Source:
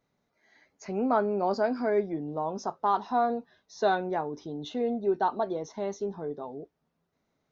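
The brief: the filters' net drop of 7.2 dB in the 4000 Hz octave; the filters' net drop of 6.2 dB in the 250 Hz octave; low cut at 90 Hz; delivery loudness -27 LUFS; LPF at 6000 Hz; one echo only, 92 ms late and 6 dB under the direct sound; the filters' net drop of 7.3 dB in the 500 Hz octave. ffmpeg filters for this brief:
-af "highpass=90,lowpass=6k,equalizer=f=250:t=o:g=-5,equalizer=f=500:t=o:g=-8.5,equalizer=f=4k:t=o:g=-7.5,aecho=1:1:92:0.501,volume=7dB"

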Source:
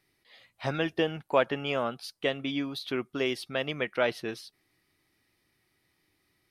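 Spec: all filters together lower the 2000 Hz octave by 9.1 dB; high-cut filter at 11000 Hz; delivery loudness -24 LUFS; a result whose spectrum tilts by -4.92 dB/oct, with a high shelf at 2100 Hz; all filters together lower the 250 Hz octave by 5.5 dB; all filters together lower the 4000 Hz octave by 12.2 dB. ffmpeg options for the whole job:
-af "lowpass=11k,equalizer=f=250:t=o:g=-7,equalizer=f=2k:t=o:g=-5.5,highshelf=f=2.1k:g=-7.5,equalizer=f=4k:t=o:g=-7,volume=10.5dB"

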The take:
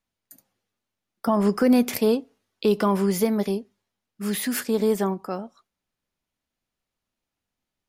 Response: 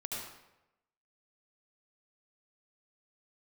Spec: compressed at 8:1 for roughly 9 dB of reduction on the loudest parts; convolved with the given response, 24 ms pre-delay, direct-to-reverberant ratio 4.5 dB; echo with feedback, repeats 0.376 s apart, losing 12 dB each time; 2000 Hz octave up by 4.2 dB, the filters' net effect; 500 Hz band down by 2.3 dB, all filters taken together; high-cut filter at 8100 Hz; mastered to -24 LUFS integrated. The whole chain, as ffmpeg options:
-filter_complex "[0:a]lowpass=8.1k,equalizer=f=500:t=o:g=-3,equalizer=f=2k:t=o:g=5.5,acompressor=threshold=-24dB:ratio=8,aecho=1:1:376|752|1128:0.251|0.0628|0.0157,asplit=2[a][b];[1:a]atrim=start_sample=2205,adelay=24[c];[b][c]afir=irnorm=-1:irlink=0,volume=-6dB[d];[a][d]amix=inputs=2:normalize=0,volume=4.5dB"

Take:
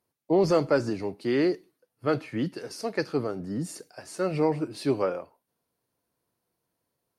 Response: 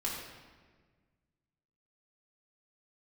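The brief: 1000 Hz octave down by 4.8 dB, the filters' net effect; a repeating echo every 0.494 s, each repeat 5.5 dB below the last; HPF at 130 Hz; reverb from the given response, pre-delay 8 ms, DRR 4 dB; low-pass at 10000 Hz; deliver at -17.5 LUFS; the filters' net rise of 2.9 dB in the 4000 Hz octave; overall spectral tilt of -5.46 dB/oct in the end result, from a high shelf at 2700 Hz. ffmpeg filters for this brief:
-filter_complex "[0:a]highpass=130,lowpass=10k,equalizer=f=1k:t=o:g=-6.5,highshelf=f=2.7k:g=-5,equalizer=f=4k:t=o:g=8.5,aecho=1:1:494|988|1482|1976|2470|2964|3458:0.531|0.281|0.149|0.079|0.0419|0.0222|0.0118,asplit=2[a][b];[1:a]atrim=start_sample=2205,adelay=8[c];[b][c]afir=irnorm=-1:irlink=0,volume=-8dB[d];[a][d]amix=inputs=2:normalize=0,volume=9.5dB"

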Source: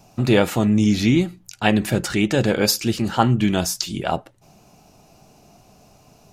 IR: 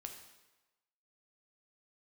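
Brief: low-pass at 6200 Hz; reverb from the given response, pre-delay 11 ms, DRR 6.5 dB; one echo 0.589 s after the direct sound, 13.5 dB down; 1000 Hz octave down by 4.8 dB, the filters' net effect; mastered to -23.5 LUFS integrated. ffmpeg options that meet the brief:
-filter_complex "[0:a]lowpass=6.2k,equalizer=f=1k:t=o:g=-7,aecho=1:1:589:0.211,asplit=2[a][b];[1:a]atrim=start_sample=2205,adelay=11[c];[b][c]afir=irnorm=-1:irlink=0,volume=-2.5dB[d];[a][d]amix=inputs=2:normalize=0,volume=-3dB"

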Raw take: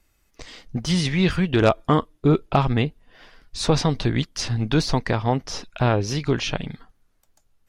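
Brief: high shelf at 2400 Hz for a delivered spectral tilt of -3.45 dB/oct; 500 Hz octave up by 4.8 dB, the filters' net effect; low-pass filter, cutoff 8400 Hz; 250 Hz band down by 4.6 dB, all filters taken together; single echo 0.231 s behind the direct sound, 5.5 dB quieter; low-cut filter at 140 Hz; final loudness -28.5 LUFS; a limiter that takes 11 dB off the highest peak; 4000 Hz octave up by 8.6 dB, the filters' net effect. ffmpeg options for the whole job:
-af "highpass=140,lowpass=8.4k,equalizer=f=250:t=o:g=-9,equalizer=f=500:t=o:g=8,highshelf=f=2.4k:g=7,equalizer=f=4k:t=o:g=4.5,alimiter=limit=-9.5dB:level=0:latency=1,aecho=1:1:231:0.531,volume=-7dB"

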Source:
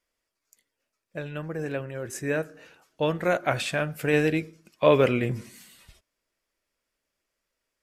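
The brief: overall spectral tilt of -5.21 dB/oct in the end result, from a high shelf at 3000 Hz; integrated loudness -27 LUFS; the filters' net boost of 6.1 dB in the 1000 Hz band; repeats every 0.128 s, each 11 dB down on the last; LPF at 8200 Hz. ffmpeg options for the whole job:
-af "lowpass=8.2k,equalizer=f=1k:t=o:g=8.5,highshelf=f=3k:g=-6,aecho=1:1:128|256|384:0.282|0.0789|0.0221,volume=-2.5dB"

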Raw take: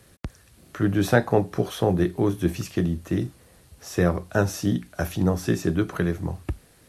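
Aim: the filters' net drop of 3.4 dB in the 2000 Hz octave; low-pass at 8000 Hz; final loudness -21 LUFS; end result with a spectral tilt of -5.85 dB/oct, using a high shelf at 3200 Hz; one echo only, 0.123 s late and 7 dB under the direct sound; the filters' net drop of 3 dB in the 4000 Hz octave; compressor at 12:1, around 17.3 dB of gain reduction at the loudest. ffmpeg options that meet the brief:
-af "lowpass=8k,equalizer=f=2k:t=o:g=-5,highshelf=f=3.2k:g=4,equalizer=f=4k:t=o:g=-5.5,acompressor=threshold=-32dB:ratio=12,aecho=1:1:123:0.447,volume=17dB"

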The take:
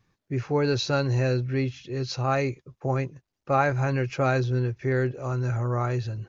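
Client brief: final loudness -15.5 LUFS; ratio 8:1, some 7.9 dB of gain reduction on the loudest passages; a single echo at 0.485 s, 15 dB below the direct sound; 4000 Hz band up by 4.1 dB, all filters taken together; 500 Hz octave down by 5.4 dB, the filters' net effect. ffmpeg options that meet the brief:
-af "equalizer=f=500:t=o:g=-7,equalizer=f=4k:t=o:g=4.5,acompressor=threshold=-29dB:ratio=8,aecho=1:1:485:0.178,volume=18dB"

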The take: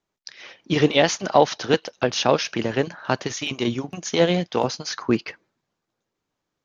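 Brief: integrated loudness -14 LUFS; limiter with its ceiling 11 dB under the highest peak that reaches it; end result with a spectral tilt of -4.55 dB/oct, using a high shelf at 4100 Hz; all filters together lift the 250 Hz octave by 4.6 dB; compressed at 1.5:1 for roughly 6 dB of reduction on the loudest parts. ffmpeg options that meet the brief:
-af "equalizer=f=250:t=o:g=6,highshelf=f=4.1k:g=-4,acompressor=threshold=-26dB:ratio=1.5,volume=15.5dB,alimiter=limit=-1dB:level=0:latency=1"

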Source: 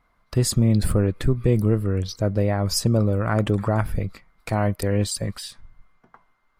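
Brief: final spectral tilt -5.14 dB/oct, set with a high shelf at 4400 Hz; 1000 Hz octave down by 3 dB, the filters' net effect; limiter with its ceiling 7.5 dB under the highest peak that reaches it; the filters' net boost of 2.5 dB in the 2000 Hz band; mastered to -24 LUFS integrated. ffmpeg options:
-af "equalizer=f=1k:t=o:g=-6,equalizer=f=2k:t=o:g=5,highshelf=f=4.4k:g=3.5,volume=2dB,alimiter=limit=-12dB:level=0:latency=1"

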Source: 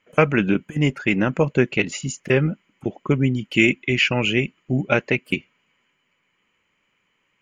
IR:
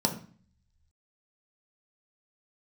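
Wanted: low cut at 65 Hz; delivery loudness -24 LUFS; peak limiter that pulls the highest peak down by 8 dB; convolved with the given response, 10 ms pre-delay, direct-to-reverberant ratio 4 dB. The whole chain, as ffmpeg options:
-filter_complex "[0:a]highpass=65,alimiter=limit=-9dB:level=0:latency=1,asplit=2[a][b];[1:a]atrim=start_sample=2205,adelay=10[c];[b][c]afir=irnorm=-1:irlink=0,volume=-13dB[d];[a][d]amix=inputs=2:normalize=0,volume=-5dB"

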